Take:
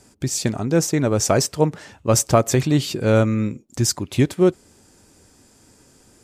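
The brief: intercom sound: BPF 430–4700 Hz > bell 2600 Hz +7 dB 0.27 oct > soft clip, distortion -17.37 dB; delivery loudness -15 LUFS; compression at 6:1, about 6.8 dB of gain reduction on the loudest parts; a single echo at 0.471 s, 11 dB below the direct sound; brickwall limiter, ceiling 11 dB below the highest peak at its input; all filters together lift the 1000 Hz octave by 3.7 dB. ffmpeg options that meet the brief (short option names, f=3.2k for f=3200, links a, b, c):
-af "equalizer=f=1k:t=o:g=5.5,acompressor=threshold=-16dB:ratio=6,alimiter=limit=-16.5dB:level=0:latency=1,highpass=430,lowpass=4.7k,equalizer=f=2.6k:t=o:w=0.27:g=7,aecho=1:1:471:0.282,asoftclip=threshold=-21dB,volume=17.5dB"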